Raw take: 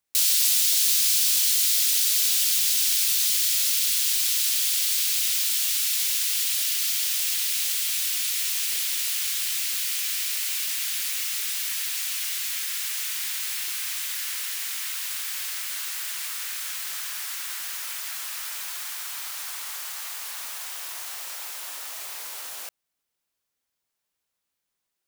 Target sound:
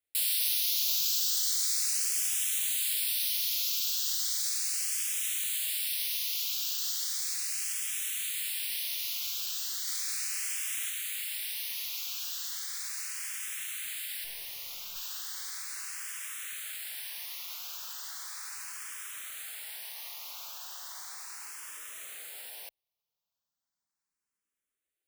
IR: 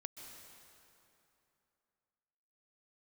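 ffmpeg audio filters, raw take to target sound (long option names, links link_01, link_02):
-filter_complex "[0:a]asettb=1/sr,asplit=3[link_01][link_02][link_03];[link_01]atrim=end=1.504[link_04];[link_02]atrim=start=1.5:end=2.08,asetpts=PTS-STARTPTS,afade=type=in:duration=0.004:curve=qsin,afade=type=out:start_time=0.576:duration=0.004:curve=qsin,lowshelf=frequency=470:gain=11[link_05];[link_03]atrim=start=2.076[link_06];[link_04][link_05]acrossfade=duration=0.004:curve1=hsin:curve2=qsin[link_07];[link_07][link_06]acrossfade=duration=0.004:curve1=qsin:curve2=hsin,asettb=1/sr,asplit=3[link_08][link_09][link_10];[link_08]atrim=end=9.844[link_11];[link_09]atrim=start=9.84:end=10.9,asetpts=PTS-STARTPTS,afade=type=in:duration=0.004:curve=qsin,afade=type=out:start_time=1.056:duration=0.004:curve=qsin,asplit=2[link_12][link_13];[link_13]adelay=33,volume=-3dB[link_14];[link_12][link_14]amix=inputs=2:normalize=0,atrim=end_sample=46746[link_15];[link_10]atrim=start=10.896[link_16];[link_11][link_15]acrossfade=duration=0.004:curve1=hsin:curve2=qsin[link_17];[link_17][link_16]acrossfade=duration=0.004:curve1=qsin:curve2=hsin,asettb=1/sr,asplit=3[link_18][link_19][link_20];[link_18]atrim=end=14.244[link_21];[link_19]atrim=start=14.24:end=14.96,asetpts=PTS-STARTPTS,afade=type=in:duration=0.004:curve=qsin,afade=type=out:start_time=0.716:duration=0.004:curve=qsin,aeval=exprs='clip(val(0),-1,0.0141)':channel_layout=same[link_22];[link_20]atrim=start=14.956[link_23];[link_21][link_22]acrossfade=duration=0.004:curve1=hsin:curve2=qsin[link_24];[link_24][link_23]acrossfade=duration=0.004:curve1=qsin:curve2=hsin,asplit=2[link_25][link_26];[link_26]afreqshift=0.36[link_27];[link_25][link_27]amix=inputs=2:normalize=1,volume=-5dB"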